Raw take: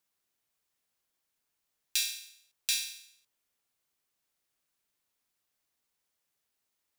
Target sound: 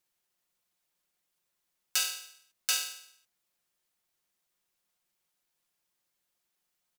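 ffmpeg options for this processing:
ffmpeg -i in.wav -af "aeval=exprs='val(0)*sin(2*PI*1100*n/s)':channel_layout=same,aecho=1:1:5.6:0.48,volume=3dB" out.wav

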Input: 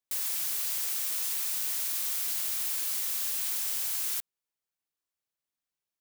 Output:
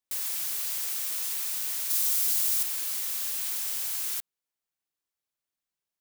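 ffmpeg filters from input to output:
ffmpeg -i in.wav -filter_complex "[0:a]asettb=1/sr,asplit=3[link_01][link_02][link_03];[link_01]atrim=end=1.904[link_04];[link_02]atrim=start=1.9:end=2.63,asetpts=PTS-STARTPTS,afade=type=in:duration=0.004:curve=qsin,afade=type=out:start_time=0.726:duration=0.004:curve=qsin,bass=frequency=250:gain=1,treble=frequency=4000:gain=6[link_05];[link_03]atrim=start=2.626[link_06];[link_04][link_05]acrossfade=duration=0.004:curve1=hsin:curve2=qsin[link_07];[link_07][link_06]acrossfade=duration=0.004:curve1=qsin:curve2=hsin" out.wav

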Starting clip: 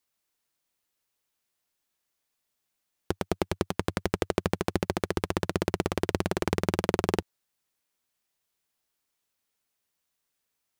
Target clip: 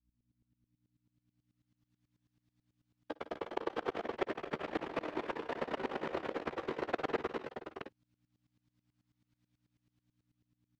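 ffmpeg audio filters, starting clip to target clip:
ffmpeg -i in.wav -filter_complex "[0:a]acrossover=split=3300[link_01][link_02];[link_02]acompressor=threshold=-45dB:ratio=4:attack=1:release=60[link_03];[link_01][link_03]amix=inputs=2:normalize=0,acrossover=split=310 5800:gain=0.0794 1 0.141[link_04][link_05][link_06];[link_04][link_05][link_06]amix=inputs=3:normalize=0,dynaudnorm=framelen=400:gausssize=7:maxgain=11.5dB,afftfilt=real='hypot(re,im)*cos(2*PI*random(0))':imag='hypot(re,im)*sin(2*PI*random(1))':win_size=512:overlap=0.75,aeval=exprs='val(0)+0.000631*(sin(2*PI*60*n/s)+sin(2*PI*2*60*n/s)/2+sin(2*PI*3*60*n/s)/3+sin(2*PI*4*60*n/s)/4+sin(2*PI*5*60*n/s)/5)':channel_layout=same,asplit=2[link_07][link_08];[link_08]adelay=13,volume=-11dB[link_09];[link_07][link_09]amix=inputs=2:normalize=0,asplit=2[link_10][link_11];[link_11]aecho=0:1:56|62|158|217|257|677:0.133|0.112|0.631|0.355|0.501|0.596[link_12];[link_10][link_12]amix=inputs=2:normalize=0,aeval=exprs='val(0)*pow(10,-19*if(lt(mod(-9.2*n/s,1),2*abs(-9.2)/1000),1-mod(-9.2*n/s,1)/(2*abs(-9.2)/1000),(mod(-9.2*n/s,1)-2*abs(-9.2)/1000)/(1-2*abs(-9.2)/1000))/20)':channel_layout=same,volume=-6dB" out.wav

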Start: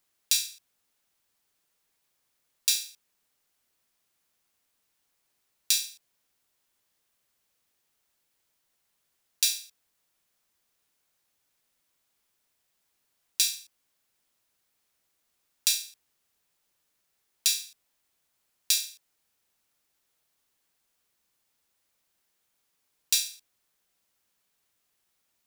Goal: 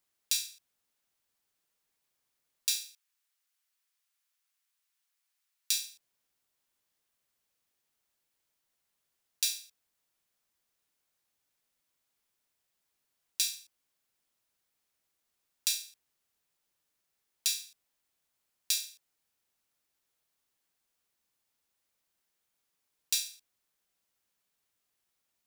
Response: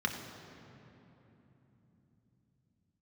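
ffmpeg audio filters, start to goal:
-filter_complex "[0:a]asettb=1/sr,asplit=3[link_01][link_02][link_03];[link_01]atrim=end=2.794[link_04];[link_02]atrim=start=2.79:end=5.74,asetpts=PTS-STARTPTS,afade=type=in:duration=0.004:curve=qsin,afade=type=out:start_time=2.946:duration=0.004:curve=qsin,highpass=1200[link_05];[link_03]atrim=start=5.736[link_06];[link_04][link_05]acrossfade=duration=0.004:curve1=hsin:curve2=qsin[link_07];[link_07][link_06]acrossfade=duration=0.004:curve1=qsin:curve2=hsin,volume=-5.5dB"

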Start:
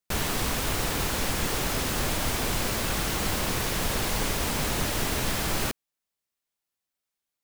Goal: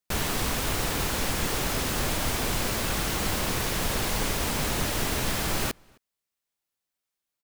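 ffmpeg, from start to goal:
ffmpeg -i in.wav -filter_complex "[0:a]asplit=2[link_01][link_02];[link_02]adelay=262.4,volume=-29dB,highshelf=frequency=4000:gain=-5.9[link_03];[link_01][link_03]amix=inputs=2:normalize=0" out.wav

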